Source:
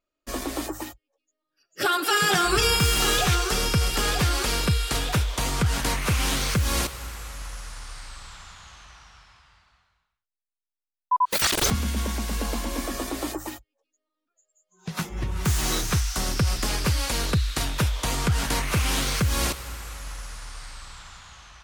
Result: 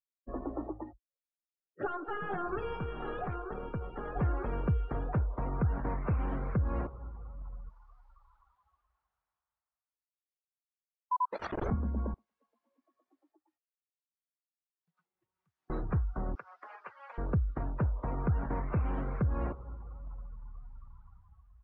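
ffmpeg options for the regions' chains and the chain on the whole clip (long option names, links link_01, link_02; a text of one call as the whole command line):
ffmpeg -i in.wav -filter_complex "[0:a]asettb=1/sr,asplit=3[link_01][link_02][link_03];[link_01]atrim=end=1.854[link_04];[link_02]atrim=start=1.85:end=4.16,asetpts=PTS-STARTPTS,afade=type=in:duration=0.004:curve=qsin,afade=type=out:start_time=2.306:duration=0.004:curve=qsin,lowpass=5800,lowshelf=frequency=170:gain=-9.5,aeval=exprs='(tanh(6.31*val(0)+0.55)-tanh(0.55))/6.31':channel_layout=same[link_05];[link_03]atrim=start=4.156[link_06];[link_04][link_05]acrossfade=duration=0.004:curve1=hsin:curve2=qsin[link_07];[link_07][link_06]acrossfade=duration=0.004:curve1=qsin:curve2=hsin,asettb=1/sr,asplit=3[link_08][link_09][link_10];[link_08]atrim=end=7.694[link_11];[link_09]atrim=start=7.69:end=11.47,asetpts=PTS-STARTPTS,afade=type=in:duration=0.004:curve=qsin,afade=type=out:start_time=3.776:duration=0.004:curve=qsin,bass=frequency=250:gain=-12,treble=frequency=4000:gain=11,asoftclip=type=hard:threshold=-8dB[link_12];[link_10]atrim=start=11.466[link_13];[link_11][link_12]acrossfade=duration=0.004:curve1=hsin:curve2=qsin[link_14];[link_14][link_13]acrossfade=duration=0.004:curve1=qsin:curve2=hsin,asettb=1/sr,asplit=3[link_15][link_16][link_17];[link_15]atrim=end=12.144[link_18];[link_16]atrim=start=12.14:end=15.7,asetpts=PTS-STARTPTS,afade=type=in:duration=0.004:curve=qsin,afade=type=out:start_time=3.556:duration=0.004:curve=qsin,aderivative,acompressor=threshold=-34dB:ratio=3:attack=3.2:release=140:knee=1:detection=peak,highpass=frequency=66:width=0.5412,highpass=frequency=66:width=1.3066[link_19];[link_17]atrim=start=15.696[link_20];[link_18][link_19]acrossfade=duration=0.004:curve1=hsin:curve2=qsin[link_21];[link_21][link_20]acrossfade=duration=0.004:curve1=qsin:curve2=hsin,asettb=1/sr,asplit=3[link_22][link_23][link_24];[link_22]atrim=end=16.354[link_25];[link_23]atrim=start=16.35:end=17.18,asetpts=PTS-STARTPTS,afade=type=in:duration=0.004:curve=qsin,afade=type=out:start_time=0.826:duration=0.004:curve=qsin,highpass=1100,highshelf=frequency=4200:gain=8.5[link_26];[link_24]atrim=start=17.176[link_27];[link_25][link_26]acrossfade=duration=0.004:curve1=hsin:curve2=qsin[link_28];[link_28][link_27]acrossfade=duration=0.004:curve1=qsin:curve2=hsin,lowpass=1000,afftdn=noise_reduction=24:noise_floor=-42,volume=-6dB" out.wav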